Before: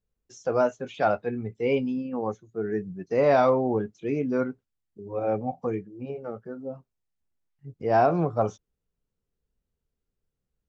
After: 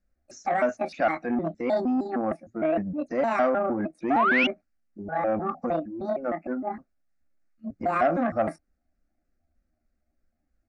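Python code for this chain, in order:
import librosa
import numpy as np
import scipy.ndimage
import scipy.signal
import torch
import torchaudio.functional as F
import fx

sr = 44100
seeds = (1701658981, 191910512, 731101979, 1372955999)

p1 = fx.pitch_trill(x, sr, semitones=7.5, every_ms=154)
p2 = scipy.signal.sosfilt(scipy.signal.butter(2, 4700.0, 'lowpass', fs=sr, output='sos'), p1)
p3 = fx.over_compress(p2, sr, threshold_db=-31.0, ratio=-1.0)
p4 = p2 + (p3 * librosa.db_to_amplitude(2.0))
p5 = fx.fixed_phaser(p4, sr, hz=650.0, stages=8)
p6 = fx.spec_paint(p5, sr, seeds[0], shape='rise', start_s=4.1, length_s=0.37, low_hz=650.0, high_hz=3000.0, level_db=-21.0)
y = fx.transformer_sat(p6, sr, knee_hz=730.0)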